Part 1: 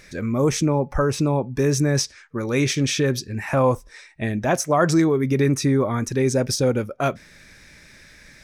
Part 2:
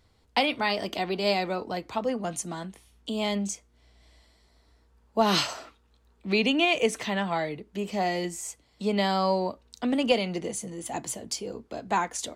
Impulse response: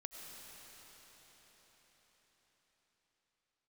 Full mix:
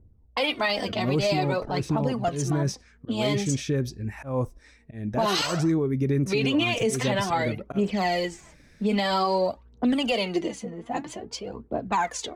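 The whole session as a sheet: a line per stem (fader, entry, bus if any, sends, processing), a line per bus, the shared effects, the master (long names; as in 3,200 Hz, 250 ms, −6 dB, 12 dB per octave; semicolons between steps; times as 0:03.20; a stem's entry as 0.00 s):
−4.0 dB, 0.70 s, no send, volume swells 179 ms; low-shelf EQ 490 Hz +10 dB; automatic ducking −8 dB, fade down 1.75 s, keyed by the second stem
+2.5 dB, 0.00 s, no send, low-pass that shuts in the quiet parts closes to 330 Hz, open at −25 dBFS; phase shifter 0.51 Hz, delay 4.7 ms, feedback 62%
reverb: not used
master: brickwall limiter −15.5 dBFS, peak gain reduction 10.5 dB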